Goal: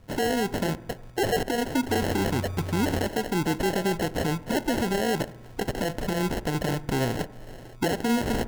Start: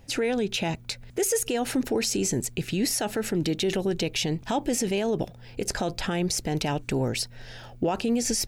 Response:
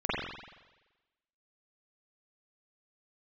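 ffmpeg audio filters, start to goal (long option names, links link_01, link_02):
-filter_complex "[0:a]asettb=1/sr,asplit=3[link_01][link_02][link_03];[link_01]atrim=end=1.894[link_04];[link_02]atrim=start=1.89:end=3.07,asetpts=PTS-STARTPTS,afade=type=in:duration=0.004:curve=qsin,afade=type=out:start_time=1.176:duration=0.004:curve=qsin,aeval=exprs='val(0)+0.0282*sin(2*PI*1100*n/s)':channel_layout=same[link_05];[link_03]atrim=start=3.066[link_06];[link_04][link_05]acrossfade=duration=0.004:curve1=hsin:curve2=qsin[link_07];[link_07][link_06]acrossfade=duration=0.004:curve1=qsin:curve2=hsin,acrusher=samples=37:mix=1:aa=0.000001,asplit=2[link_08][link_09];[1:a]atrim=start_sample=2205,lowpass=1900[link_10];[link_09][link_10]afir=irnorm=-1:irlink=0,volume=-26.5dB[link_11];[link_08][link_11]amix=inputs=2:normalize=0"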